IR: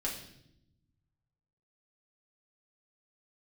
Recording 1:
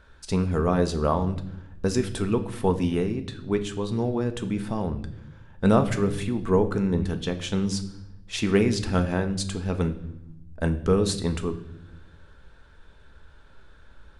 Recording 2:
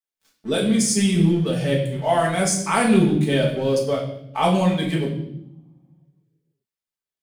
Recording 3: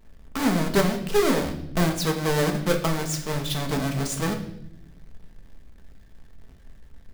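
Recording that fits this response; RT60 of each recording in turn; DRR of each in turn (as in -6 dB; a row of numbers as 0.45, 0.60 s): 2; 0.80, 0.75, 0.80 s; 7.0, -4.0, 2.5 dB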